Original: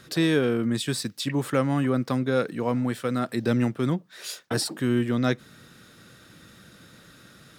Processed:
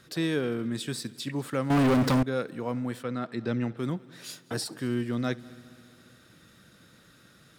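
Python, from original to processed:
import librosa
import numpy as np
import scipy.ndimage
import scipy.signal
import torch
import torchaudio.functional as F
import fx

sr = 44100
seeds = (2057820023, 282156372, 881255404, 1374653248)

y = fx.echo_heads(x, sr, ms=67, heads='first and third', feedback_pct=68, wet_db=-24.0)
y = fx.leveller(y, sr, passes=5, at=(1.7, 2.23))
y = fx.lowpass(y, sr, hz=4700.0, slope=12, at=(3.02, 3.76), fade=0.02)
y = y * 10.0 ** (-6.0 / 20.0)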